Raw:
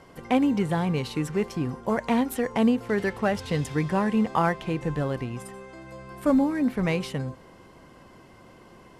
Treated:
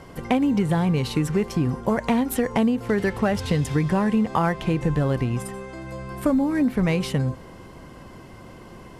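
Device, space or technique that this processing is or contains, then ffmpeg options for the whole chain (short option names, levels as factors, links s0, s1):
ASMR close-microphone chain: -af "lowshelf=f=180:g=7,acompressor=threshold=0.0708:ratio=6,highshelf=f=9700:g=3.5,volume=1.88"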